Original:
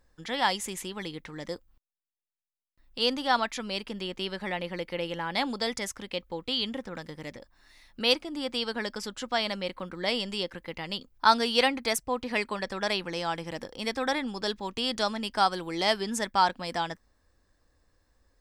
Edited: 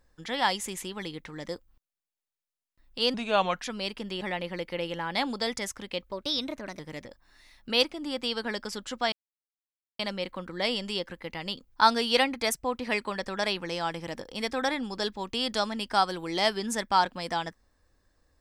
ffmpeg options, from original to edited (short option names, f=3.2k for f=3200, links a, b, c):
-filter_complex "[0:a]asplit=7[a][b][c][d][e][f][g];[a]atrim=end=3.144[h];[b]atrim=start=3.14:end=3.54,asetpts=PTS-STARTPTS,asetrate=35280,aresample=44100[i];[c]atrim=start=3.536:end=4.112[j];[d]atrim=start=4.408:end=6.324[k];[e]atrim=start=6.32:end=7.1,asetpts=PTS-STARTPTS,asetrate=51156,aresample=44100,atrim=end_sample=29653,asetpts=PTS-STARTPTS[l];[f]atrim=start=7.096:end=9.43,asetpts=PTS-STARTPTS,afade=t=out:st=2.33:d=0.004:c=hsin,apad=pad_dur=0.87[m];[g]atrim=start=9.43,asetpts=PTS-STARTPTS,afade=t=in:d=0.004:c=hsin[n];[h][i]acrossfade=d=0.004:c1=hsin:c2=hsin[o];[o][j]acrossfade=d=0.004:c1=hsin:c2=hsin[p];[p][k]acrossfade=d=0.004:c1=hsin:c2=hsin[q];[q][l]acrossfade=d=0.004:c1=hsin:c2=hsin[r];[m][n]concat=n=2:v=0:a=1[s];[r][s]acrossfade=d=0.004:c1=hsin:c2=hsin"